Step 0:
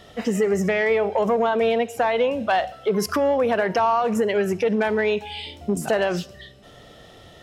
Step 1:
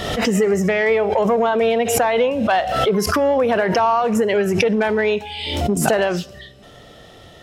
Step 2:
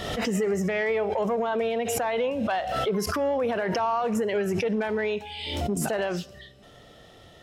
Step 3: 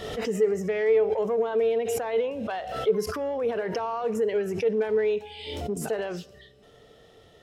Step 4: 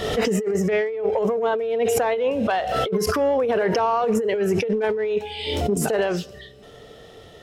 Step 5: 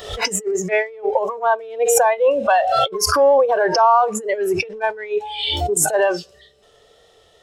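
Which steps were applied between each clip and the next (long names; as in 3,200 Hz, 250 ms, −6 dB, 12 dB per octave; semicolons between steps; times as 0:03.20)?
background raised ahead of every attack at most 41 dB per second; level +3 dB
brickwall limiter −10.5 dBFS, peak gain reduction 8 dB; level −7.5 dB
parametric band 440 Hz +12 dB 0.23 octaves; level −5.5 dB
compressor whose output falls as the input rises −28 dBFS, ratio −1; level +7 dB
tape wow and flutter 26 cents; octave-band graphic EQ 125/250/500/1,000/4,000/8,000 Hz −6/−9/+3/+3/+4/+8 dB; noise reduction from a noise print of the clip's start 15 dB; level +5.5 dB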